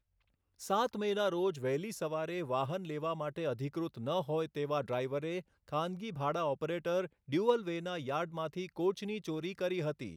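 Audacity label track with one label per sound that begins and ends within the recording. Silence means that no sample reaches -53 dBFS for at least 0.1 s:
0.590000	5.420000	sound
5.680000	7.070000	sound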